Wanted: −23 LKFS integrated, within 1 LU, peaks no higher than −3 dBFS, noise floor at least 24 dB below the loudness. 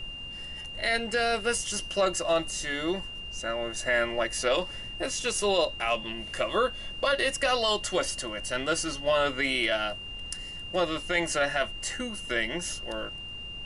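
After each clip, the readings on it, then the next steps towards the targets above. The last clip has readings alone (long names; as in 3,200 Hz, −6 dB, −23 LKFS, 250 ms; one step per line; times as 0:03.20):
interfering tone 2,800 Hz; level of the tone −38 dBFS; background noise floor −40 dBFS; target noise floor −53 dBFS; integrated loudness −28.5 LKFS; sample peak −13.5 dBFS; target loudness −23.0 LKFS
→ notch filter 2,800 Hz, Q 30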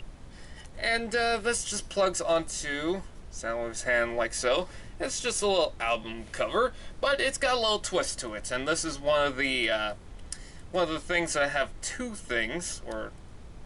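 interfering tone none found; background noise floor −46 dBFS; target noise floor −53 dBFS
→ noise reduction from a noise print 7 dB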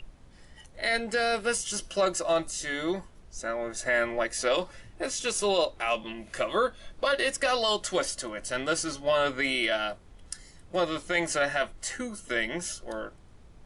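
background noise floor −53 dBFS; integrated loudness −29.0 LKFS; sample peak −13.5 dBFS; target loudness −23.0 LKFS
→ level +6 dB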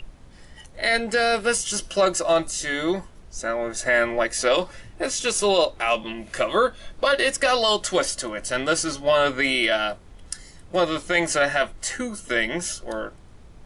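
integrated loudness −23.0 LKFS; sample peak −7.5 dBFS; background noise floor −47 dBFS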